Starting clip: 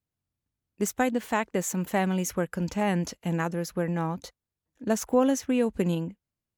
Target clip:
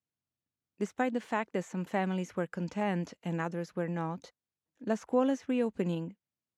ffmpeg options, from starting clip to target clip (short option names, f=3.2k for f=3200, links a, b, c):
-filter_complex "[0:a]acrossover=split=2900[a][b];[b]acompressor=threshold=-44dB:ratio=4:attack=1:release=60[c];[a][c]amix=inputs=2:normalize=0,highpass=130,lowpass=7.6k,volume=-5dB"